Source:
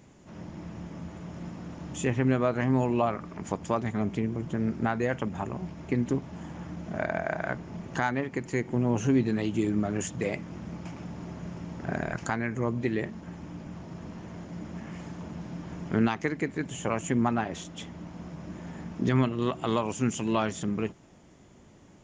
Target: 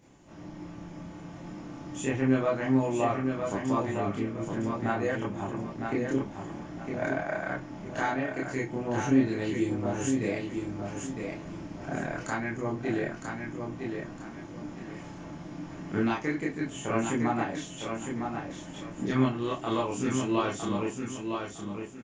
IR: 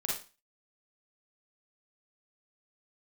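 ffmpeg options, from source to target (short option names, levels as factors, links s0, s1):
-filter_complex "[0:a]aecho=1:1:959|1918|2877|3836:0.531|0.154|0.0446|0.0129[s0];[1:a]atrim=start_sample=2205,asetrate=79380,aresample=44100[s1];[s0][s1]afir=irnorm=-1:irlink=0"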